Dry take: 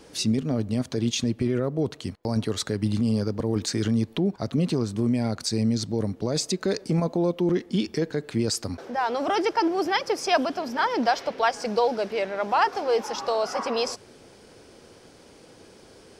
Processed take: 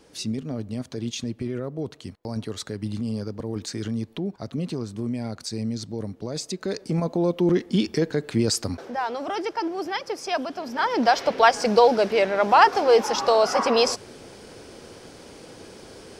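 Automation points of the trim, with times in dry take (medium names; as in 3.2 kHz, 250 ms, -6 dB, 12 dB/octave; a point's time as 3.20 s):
6.45 s -5 dB
7.48 s +3 dB
8.68 s +3 dB
9.24 s -4.5 dB
10.46 s -4.5 dB
11.32 s +6.5 dB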